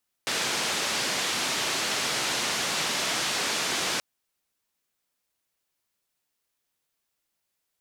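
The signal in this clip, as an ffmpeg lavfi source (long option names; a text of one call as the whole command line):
ffmpeg -f lavfi -i "anoisesrc=color=white:duration=3.73:sample_rate=44100:seed=1,highpass=frequency=150,lowpass=frequency=5700,volume=-17.5dB" out.wav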